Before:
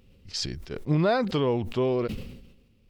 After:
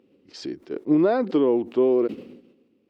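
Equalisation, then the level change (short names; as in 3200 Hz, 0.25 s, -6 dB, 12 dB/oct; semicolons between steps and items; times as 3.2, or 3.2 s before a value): resonant high-pass 310 Hz, resonance Q 3.4; high shelf 2200 Hz -9.5 dB; high shelf 6900 Hz -7 dB; 0.0 dB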